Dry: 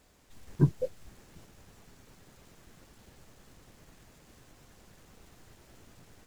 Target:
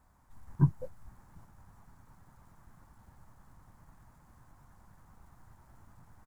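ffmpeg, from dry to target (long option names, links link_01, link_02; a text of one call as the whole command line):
ffmpeg -i in.wav -af "firequalizer=gain_entry='entry(110,0);entry(430,-15);entry(910,3);entry(2700,-19);entry(10000,-9)':delay=0.05:min_phase=1,volume=1dB" out.wav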